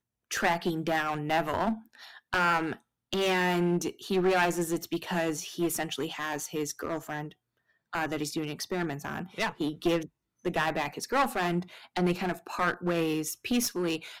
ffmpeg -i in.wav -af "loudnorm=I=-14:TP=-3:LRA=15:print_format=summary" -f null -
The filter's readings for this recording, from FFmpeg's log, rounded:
Input Integrated:    -30.2 LUFS
Input True Peak:     -12.2 dBTP
Input LRA:             4.8 LU
Input Threshold:     -40.4 LUFS